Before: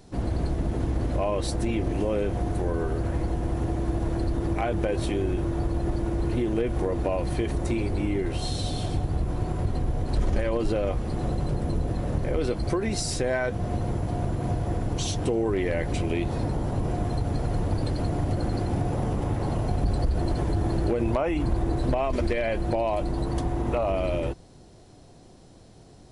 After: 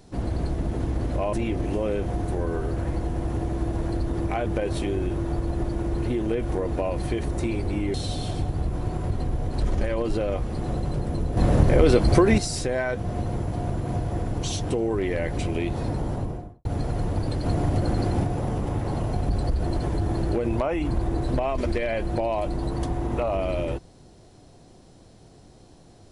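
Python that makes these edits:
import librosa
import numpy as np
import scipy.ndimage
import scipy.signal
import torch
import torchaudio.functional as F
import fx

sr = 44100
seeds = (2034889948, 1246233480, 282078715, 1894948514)

y = fx.studio_fade_out(x, sr, start_s=16.62, length_s=0.58)
y = fx.edit(y, sr, fx.cut(start_s=1.33, length_s=0.27),
    fx.cut(start_s=8.21, length_s=0.28),
    fx.clip_gain(start_s=11.92, length_s=1.01, db=9.0),
    fx.clip_gain(start_s=18.01, length_s=0.78, db=3.0), tone=tone)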